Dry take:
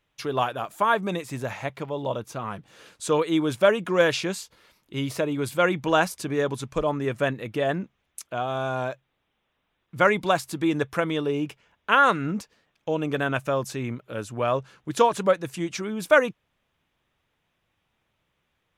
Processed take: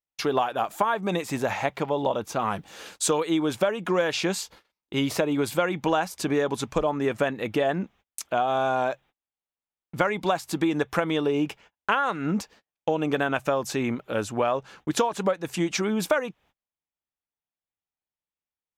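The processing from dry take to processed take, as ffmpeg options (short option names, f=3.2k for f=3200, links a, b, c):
-filter_complex "[0:a]asettb=1/sr,asplit=3[a][b][c];[a]atrim=end=2.394[d];[b]atrim=start=2.39:end=3.27,asetpts=PTS-STARTPTS,afade=t=in:d=0.004:c=qsin,afade=t=out:st=0.876:d=0.004:c=qsin,highshelf=f=4.7k:g=7[e];[c]atrim=start=3.266[f];[d][e]acrossfade=d=0.004:c1=hsin:c2=qsin[g];[g][f]acrossfade=d=0.004:c1=qsin:c2=hsin,agate=range=-33dB:threshold=-53dB:ratio=16:detection=peak,equalizer=f=125:t=o:w=0.33:g=-10,equalizer=f=800:t=o:w=0.33:g=6,equalizer=f=10k:t=o:w=0.33:g=-5,acompressor=threshold=-26dB:ratio=12,volume=6dB"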